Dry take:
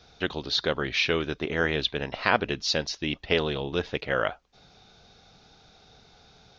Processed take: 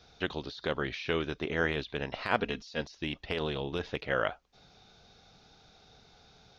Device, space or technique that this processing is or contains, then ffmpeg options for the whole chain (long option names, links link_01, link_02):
de-esser from a sidechain: -filter_complex "[0:a]asettb=1/sr,asplit=3[link_01][link_02][link_03];[link_01]atrim=end=2.394[link_04];[link_02]atrim=start=2.39:end=2.81,asetpts=PTS-STARTPTS,afade=type=in:duration=0.004:curve=qsin,afade=type=out:start_time=0.416:duration=0.004:curve=qsin,aecho=1:1:4.3:0.58,atrim=end_sample=18522[link_05];[link_03]atrim=start=2.806[link_06];[link_04][link_05]acrossfade=duration=0.004:curve1=hsin:curve2=qsin[link_07];[link_07][link_06]acrossfade=duration=0.004:curve1=qsin:curve2=hsin,asplit=2[link_08][link_09];[link_09]highpass=frequency=5500:width=0.5412,highpass=frequency=5500:width=1.3066,apad=whole_len=290194[link_10];[link_08][link_10]sidechaincompress=threshold=-48dB:ratio=20:attack=1.6:release=47,volume=-3.5dB"